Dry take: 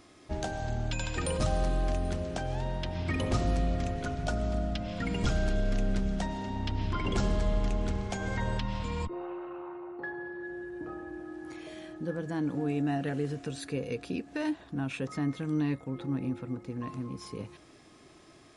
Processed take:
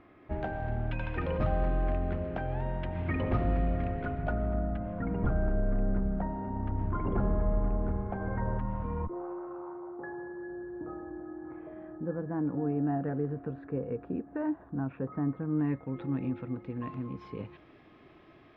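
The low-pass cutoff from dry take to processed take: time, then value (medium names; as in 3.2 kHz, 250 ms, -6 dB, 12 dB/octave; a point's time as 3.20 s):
low-pass 24 dB/octave
4.08 s 2.3 kHz
5.02 s 1.4 kHz
15.47 s 1.4 kHz
16.06 s 3 kHz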